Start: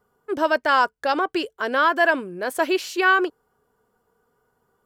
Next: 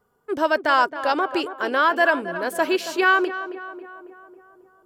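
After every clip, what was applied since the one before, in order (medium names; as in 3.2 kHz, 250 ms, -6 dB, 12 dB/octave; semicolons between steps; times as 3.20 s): tape echo 273 ms, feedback 63%, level -10.5 dB, low-pass 1.9 kHz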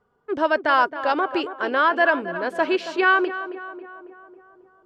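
low-pass 3.8 kHz 12 dB/octave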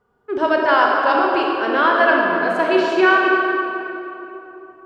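reverberation RT60 2.8 s, pre-delay 27 ms, DRR -1.5 dB; trim +1 dB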